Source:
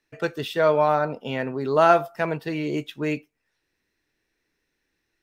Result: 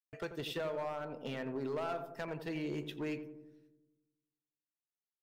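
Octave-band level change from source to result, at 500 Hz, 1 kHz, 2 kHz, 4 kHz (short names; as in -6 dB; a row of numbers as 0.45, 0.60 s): -17.0, -21.0, -16.0, -10.5 dB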